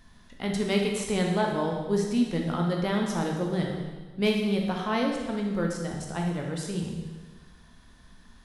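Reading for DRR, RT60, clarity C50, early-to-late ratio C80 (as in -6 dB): 0.5 dB, 1.4 s, 3.0 dB, 5.0 dB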